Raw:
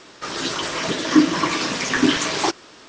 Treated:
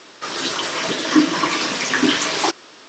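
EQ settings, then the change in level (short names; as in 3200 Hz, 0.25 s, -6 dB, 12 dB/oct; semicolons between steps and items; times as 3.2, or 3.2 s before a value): HPF 240 Hz 6 dB/oct; elliptic low-pass 7700 Hz, stop band 40 dB; +3.0 dB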